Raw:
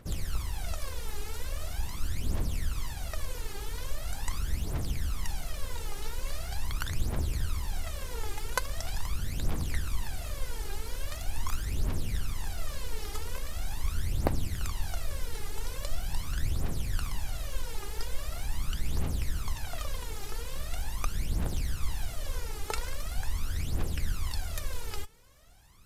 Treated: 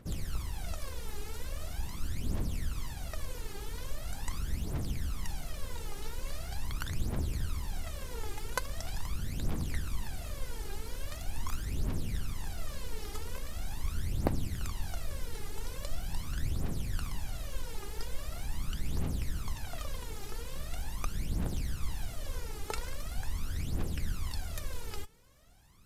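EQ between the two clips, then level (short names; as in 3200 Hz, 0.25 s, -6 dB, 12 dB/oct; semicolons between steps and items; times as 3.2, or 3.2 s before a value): bell 210 Hz +5 dB 1.9 oct; -4.0 dB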